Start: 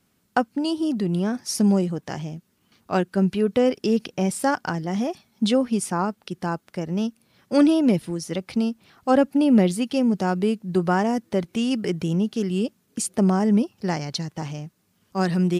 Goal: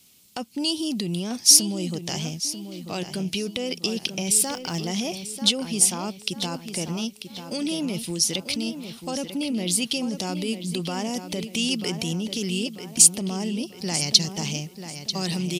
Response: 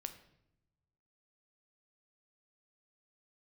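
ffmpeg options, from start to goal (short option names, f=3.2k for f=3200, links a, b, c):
-filter_complex "[0:a]highshelf=f=2.5k:g=-9,asplit=2[a][b];[b]acompressor=threshold=-28dB:ratio=6,volume=2.5dB[c];[a][c]amix=inputs=2:normalize=0,alimiter=limit=-16dB:level=0:latency=1:release=17,aexciter=amount=9.1:drive=6.5:freq=2.4k,asettb=1/sr,asplit=3[d][e][f];[d]atrim=end=4.334[g];[e]atrim=start=4.33:end=4.78,asetpts=PTS-STARTPTS,afade=t=in:d=0.004:c=qsin,afade=t=out:st=0.446:d=0.004:c=qsin,acrusher=bits=8:dc=4:mix=0:aa=0.000001[h];[f]atrim=start=4.776[i];[g][h]acrossfade=d=0.004:c1=hsin:c2=qsin[j];[j][i]acrossfade=d=0.004:c1=qsin:c2=hsin,asplit=2[k][l];[l]adelay=941,lowpass=f=4.1k:p=1,volume=-9dB,asplit=2[m][n];[n]adelay=941,lowpass=f=4.1k:p=1,volume=0.45,asplit=2[o][p];[p]adelay=941,lowpass=f=4.1k:p=1,volume=0.45,asplit=2[q][r];[r]adelay=941,lowpass=f=4.1k:p=1,volume=0.45,asplit=2[s][t];[t]adelay=941,lowpass=f=4.1k:p=1,volume=0.45[u];[m][o][q][s][u]amix=inputs=5:normalize=0[v];[k][v]amix=inputs=2:normalize=0,volume=-6.5dB"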